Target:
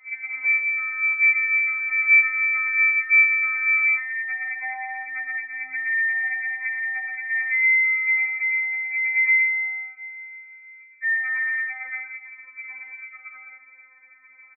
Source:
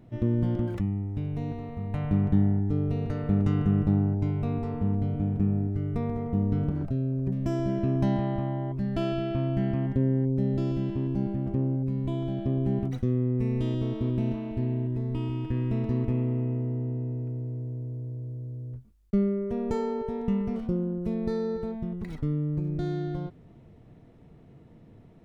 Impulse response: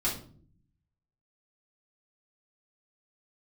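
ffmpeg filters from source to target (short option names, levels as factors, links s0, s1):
-filter_complex "[0:a]asplit=2[s0][s1];[s1]alimiter=limit=0.0944:level=0:latency=1:release=16,volume=1.26[s2];[s0][s2]amix=inputs=2:normalize=0,asetrate=76440,aresample=44100,aecho=1:1:119.5|172:0.631|0.398,tremolo=f=120:d=0.519,lowpass=f=2100:t=q:w=0.5098,lowpass=f=2100:t=q:w=0.6013,lowpass=f=2100:t=q:w=0.9,lowpass=f=2100:t=q:w=2.563,afreqshift=-2500,afftfilt=real='re*3.46*eq(mod(b,12),0)':imag='im*3.46*eq(mod(b,12),0)':win_size=2048:overlap=0.75,volume=0.794"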